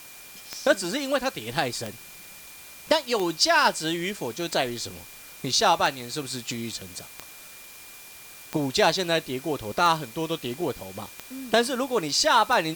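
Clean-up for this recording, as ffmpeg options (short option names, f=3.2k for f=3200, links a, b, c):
-af "adeclick=t=4,bandreject=f=2.4k:w=30,afftdn=nr=24:nf=-45"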